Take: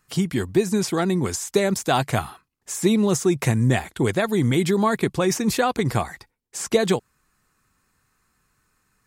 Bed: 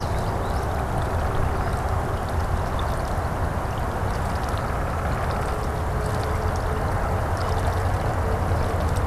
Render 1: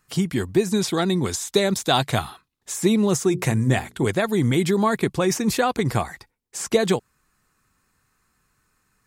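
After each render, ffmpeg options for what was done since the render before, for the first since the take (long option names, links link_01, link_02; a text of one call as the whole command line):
ffmpeg -i in.wav -filter_complex "[0:a]asettb=1/sr,asplit=3[link_01][link_02][link_03];[link_01]atrim=end=0.714[link_04];[link_02]atrim=start=0.71:end=2.74,asetpts=PTS-STARTPTS,afade=type=in:duration=0.004:curve=qsin,afade=type=out:start_time=2.026:duration=0.004:curve=qsin,equalizer=frequency=3700:width_type=o:width=0.34:gain=9[link_05];[link_03]atrim=start=2.736[link_06];[link_04][link_05]acrossfade=duration=0.004:curve1=hsin:curve2=qsin[link_07];[link_07][link_06]acrossfade=duration=0.004:curve1=qsin:curve2=hsin,asettb=1/sr,asplit=3[link_08][link_09][link_10];[link_08]atrim=end=3.284[link_11];[link_09]atrim=start=3.28:end=4.06,asetpts=PTS-STARTPTS,afade=type=in:duration=0.004:curve=qsin,afade=type=out:start_time=0.776:duration=0.004:curve=qsin,bandreject=frequency=60:width_type=h:width=6,bandreject=frequency=120:width_type=h:width=6,bandreject=frequency=180:width_type=h:width=6,bandreject=frequency=240:width_type=h:width=6,bandreject=frequency=300:width_type=h:width=6,bandreject=frequency=360:width_type=h:width=6,bandreject=frequency=420:width_type=h:width=6,bandreject=frequency=480:width_type=h:width=6[link_12];[link_10]atrim=start=4.056[link_13];[link_11][link_12]acrossfade=duration=0.004:curve1=hsin:curve2=qsin[link_14];[link_14][link_13]acrossfade=duration=0.004:curve1=qsin:curve2=hsin" out.wav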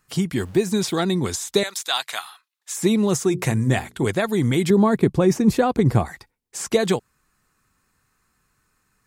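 ffmpeg -i in.wav -filter_complex "[0:a]asettb=1/sr,asplit=3[link_01][link_02][link_03];[link_01]atrim=end=0.404[link_04];[link_02]atrim=start=0.4:end=1.01,asetpts=PTS-STARTPTS,afade=type=in:duration=0.004:curve=qsin,afade=type=out:start_time=0.606:duration=0.004:curve=qsin,aeval=exprs='val(0)*gte(abs(val(0)),0.0075)':channel_layout=same[link_05];[link_03]atrim=start=1.006[link_06];[link_04][link_05]acrossfade=duration=0.004:curve1=hsin:curve2=qsin[link_07];[link_07][link_06]acrossfade=duration=0.004:curve1=qsin:curve2=hsin,asettb=1/sr,asplit=3[link_08][link_09][link_10];[link_08]atrim=end=1.634[link_11];[link_09]atrim=start=1.63:end=2.77,asetpts=PTS-STARTPTS,afade=type=in:duration=0.004:curve=qsin,afade=type=out:start_time=1.136:duration=0.004:curve=qsin,highpass=1200[link_12];[link_10]atrim=start=2.766[link_13];[link_11][link_12]acrossfade=duration=0.004:curve1=hsin:curve2=qsin[link_14];[link_14][link_13]acrossfade=duration=0.004:curve1=qsin:curve2=hsin,asettb=1/sr,asplit=3[link_15][link_16][link_17];[link_15]atrim=end=4.704[link_18];[link_16]atrim=start=4.7:end=6.06,asetpts=PTS-STARTPTS,afade=type=in:duration=0.004:curve=qsin,afade=type=out:start_time=1.356:duration=0.004:curve=qsin,tiltshelf=frequency=820:gain=6.5[link_19];[link_17]atrim=start=6.056[link_20];[link_18][link_19]acrossfade=duration=0.004:curve1=hsin:curve2=qsin[link_21];[link_21][link_20]acrossfade=duration=0.004:curve1=qsin:curve2=hsin" out.wav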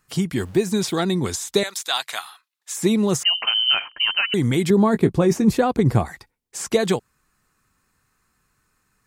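ffmpeg -i in.wav -filter_complex "[0:a]asettb=1/sr,asplit=3[link_01][link_02][link_03];[link_01]atrim=end=3.234[link_04];[link_02]atrim=start=3.23:end=4.34,asetpts=PTS-STARTPTS,afade=type=in:duration=0.004:curve=qsin,afade=type=out:start_time=1.106:duration=0.004:curve=qsin,lowpass=frequency=2700:width_type=q:width=0.5098,lowpass=frequency=2700:width_type=q:width=0.6013,lowpass=frequency=2700:width_type=q:width=0.9,lowpass=frequency=2700:width_type=q:width=2.563,afreqshift=-3200[link_05];[link_03]atrim=start=4.336[link_06];[link_04][link_05]acrossfade=duration=0.004:curve1=hsin:curve2=qsin[link_07];[link_07][link_06]acrossfade=duration=0.004:curve1=qsin:curve2=hsin,asettb=1/sr,asplit=3[link_08][link_09][link_10];[link_08]atrim=end=4.924[link_11];[link_09]atrim=start=4.92:end=5.45,asetpts=PTS-STARTPTS,afade=type=in:duration=0.004:curve=qsin,afade=type=out:start_time=0.526:duration=0.004:curve=qsin,asplit=2[link_12][link_13];[link_13]adelay=18,volume=-11dB[link_14];[link_12][link_14]amix=inputs=2:normalize=0,atrim=end_sample=23373[link_15];[link_10]atrim=start=5.446[link_16];[link_11][link_15]acrossfade=duration=0.004:curve1=hsin:curve2=qsin[link_17];[link_17][link_16]acrossfade=duration=0.004:curve1=qsin:curve2=hsin" out.wav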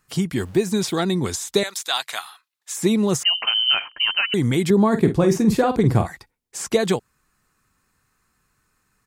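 ffmpeg -i in.wav -filter_complex "[0:a]asplit=3[link_01][link_02][link_03];[link_01]afade=type=out:start_time=4.91:duration=0.02[link_04];[link_02]asplit=2[link_05][link_06];[link_06]adelay=47,volume=-9dB[link_07];[link_05][link_07]amix=inputs=2:normalize=0,afade=type=in:start_time=4.91:duration=0.02,afade=type=out:start_time=6.07:duration=0.02[link_08];[link_03]afade=type=in:start_time=6.07:duration=0.02[link_09];[link_04][link_08][link_09]amix=inputs=3:normalize=0" out.wav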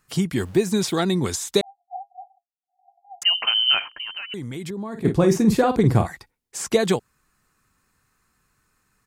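ffmpeg -i in.wav -filter_complex "[0:a]asettb=1/sr,asplit=3[link_01][link_02][link_03];[link_01]atrim=end=1.614[link_04];[link_02]atrim=start=1.61:end=3.22,asetpts=PTS-STARTPTS,afade=type=in:duration=0.004:curve=qsin,afade=type=out:start_time=1.606:duration=0.004:curve=qsin,asuperpass=centerf=750:order=20:qfactor=7.1[link_05];[link_03]atrim=start=3.216[link_06];[link_04][link_05]acrossfade=duration=0.004:curve1=hsin:curve2=qsin[link_07];[link_07][link_06]acrossfade=duration=0.004:curve1=qsin:curve2=hsin,asplit=3[link_08][link_09][link_10];[link_08]afade=type=out:start_time=3.88:duration=0.02[link_11];[link_09]acompressor=threshold=-31dB:ratio=4:attack=3.2:release=140:knee=1:detection=peak,afade=type=in:start_time=3.88:duration=0.02,afade=type=out:start_time=5.04:duration=0.02[link_12];[link_10]afade=type=in:start_time=5.04:duration=0.02[link_13];[link_11][link_12][link_13]amix=inputs=3:normalize=0" out.wav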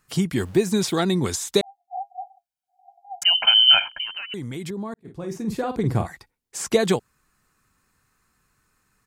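ffmpeg -i in.wav -filter_complex "[0:a]asettb=1/sr,asplit=3[link_01][link_02][link_03];[link_01]atrim=end=1.974[link_04];[link_02]atrim=start=1.97:end=4.07,asetpts=PTS-STARTPTS,afade=type=in:duration=0.004:curve=qsin,afade=type=out:start_time=2.096:duration=0.004:curve=qsin,aecho=1:1:1.3:0.97,atrim=end_sample=92610[link_05];[link_03]atrim=start=4.066[link_06];[link_04][link_05]acrossfade=duration=0.004:curve1=hsin:curve2=qsin[link_07];[link_07][link_06]acrossfade=duration=0.004:curve1=qsin:curve2=hsin,asplit=2[link_08][link_09];[link_08]atrim=end=4.94,asetpts=PTS-STARTPTS,afade=type=out:start_time=4.936:duration=0.004:curve=hsin[link_10];[link_09]atrim=start=4.94,asetpts=PTS-STARTPTS,afade=type=in:duration=1.72[link_11];[link_10][link_11]concat=n=2:v=0:a=1" out.wav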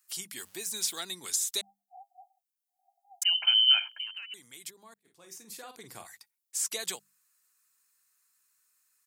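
ffmpeg -i in.wav -af "aderivative,bandreject=frequency=50:width_type=h:width=6,bandreject=frequency=100:width_type=h:width=6,bandreject=frequency=150:width_type=h:width=6,bandreject=frequency=200:width_type=h:width=6" out.wav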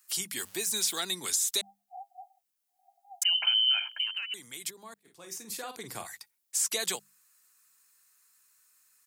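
ffmpeg -i in.wav -filter_complex "[0:a]acrossover=split=190[link_01][link_02];[link_02]acompressor=threshold=-27dB:ratio=4[link_03];[link_01][link_03]amix=inputs=2:normalize=0,asplit=2[link_04][link_05];[link_05]alimiter=level_in=4dB:limit=-24dB:level=0:latency=1:release=10,volume=-4dB,volume=0.5dB[link_06];[link_04][link_06]amix=inputs=2:normalize=0" out.wav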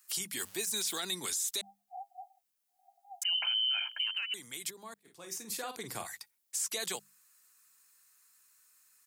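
ffmpeg -i in.wav -af "alimiter=level_in=0.5dB:limit=-24dB:level=0:latency=1:release=30,volume=-0.5dB" out.wav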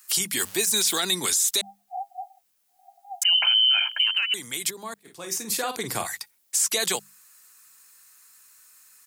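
ffmpeg -i in.wav -af "volume=11.5dB" out.wav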